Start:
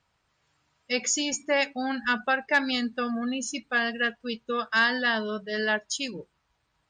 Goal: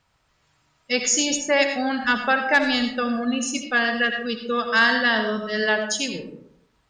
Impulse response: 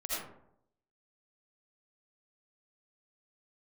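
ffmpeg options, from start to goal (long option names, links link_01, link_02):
-filter_complex "[0:a]asplit=2[link_01][link_02];[link_02]highshelf=frequency=5500:gain=6[link_03];[1:a]atrim=start_sample=2205,lowshelf=frequency=130:gain=9[link_04];[link_03][link_04]afir=irnorm=-1:irlink=0,volume=-7.5dB[link_05];[link_01][link_05]amix=inputs=2:normalize=0,volume=2.5dB"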